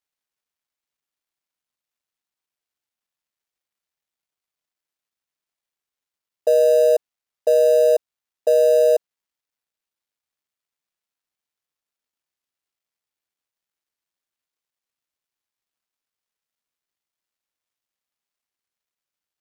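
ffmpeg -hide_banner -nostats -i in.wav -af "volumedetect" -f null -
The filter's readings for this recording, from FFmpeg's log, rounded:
mean_volume: -25.6 dB
max_volume: -8.4 dB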